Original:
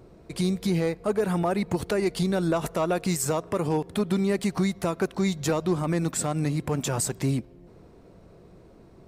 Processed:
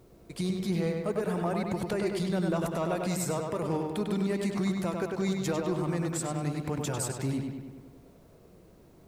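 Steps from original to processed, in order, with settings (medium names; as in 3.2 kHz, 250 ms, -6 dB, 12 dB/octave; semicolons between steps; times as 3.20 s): added noise white -66 dBFS; on a send: filtered feedback delay 99 ms, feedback 61%, low-pass 4.4 kHz, level -3.5 dB; on the sum: trim -6.5 dB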